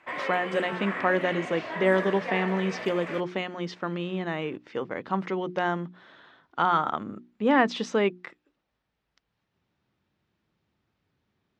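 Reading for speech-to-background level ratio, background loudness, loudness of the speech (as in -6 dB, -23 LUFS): 6.5 dB, -34.5 LUFS, -28.0 LUFS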